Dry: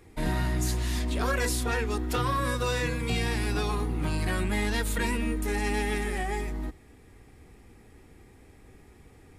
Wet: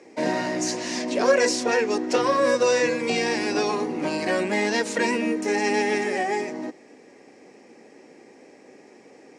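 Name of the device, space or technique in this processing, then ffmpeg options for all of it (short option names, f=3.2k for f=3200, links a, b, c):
television speaker: -af "highpass=f=230:w=0.5412,highpass=f=230:w=1.3066,equalizer=f=560:t=q:w=4:g=9,equalizer=f=1.3k:t=q:w=4:g=-8,equalizer=f=3.5k:t=q:w=4:g=-9,equalizer=f=5.7k:t=q:w=4:g=6,lowpass=f=7.1k:w=0.5412,lowpass=f=7.1k:w=1.3066,volume=7.5dB"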